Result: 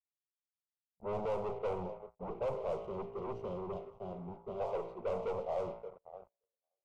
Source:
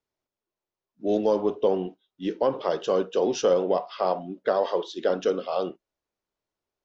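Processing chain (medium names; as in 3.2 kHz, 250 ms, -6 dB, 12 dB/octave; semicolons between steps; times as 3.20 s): median filter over 25 samples; peaking EQ 1.7 kHz -13.5 dB 2.1 oct; thinning echo 575 ms, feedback 38%, high-pass 1.1 kHz, level -11 dB; time-frequency box 2.75–4.60 s, 410–2700 Hz -16 dB; valve stage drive 17 dB, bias 0.8; feedback comb 57 Hz, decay 0.83 s, harmonics all, mix 60%; waveshaping leveller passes 5; resonant high shelf 2.9 kHz -9 dB, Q 1.5; static phaser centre 710 Hz, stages 4; level-controlled noise filter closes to 870 Hz, open at -24.5 dBFS; trim -4.5 dB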